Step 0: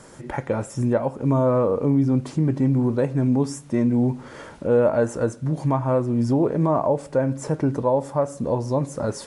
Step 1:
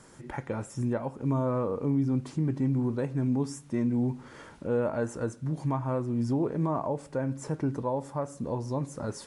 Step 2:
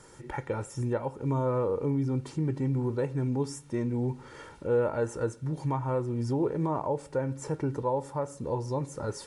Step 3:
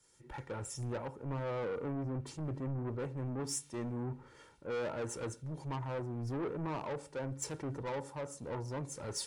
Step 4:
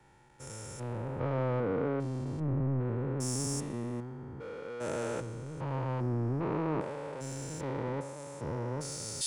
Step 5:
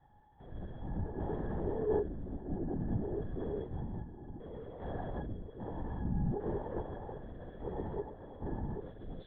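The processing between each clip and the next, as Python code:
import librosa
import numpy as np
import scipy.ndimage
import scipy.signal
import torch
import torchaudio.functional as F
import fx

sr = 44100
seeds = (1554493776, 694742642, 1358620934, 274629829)

y1 = fx.peak_eq(x, sr, hz=580.0, db=-5.0, octaves=0.67)
y1 = y1 * librosa.db_to_amplitude(-7.0)
y2 = y1 + 0.46 * np.pad(y1, (int(2.2 * sr / 1000.0), 0))[:len(y1)]
y3 = 10.0 ** (-33.0 / 20.0) * np.tanh(y2 / 10.0 ** (-33.0 / 20.0))
y3 = fx.band_widen(y3, sr, depth_pct=100)
y3 = y3 * librosa.db_to_amplitude(-2.0)
y4 = fx.spec_steps(y3, sr, hold_ms=400)
y4 = fx.band_widen(y4, sr, depth_pct=70)
y4 = y4 * librosa.db_to_amplitude(7.5)
y5 = fx.octave_resonator(y4, sr, note='G#', decay_s=0.14)
y5 = fx.lpc_vocoder(y5, sr, seeds[0], excitation='whisper', order=8)
y5 = y5 * librosa.db_to_amplitude(7.5)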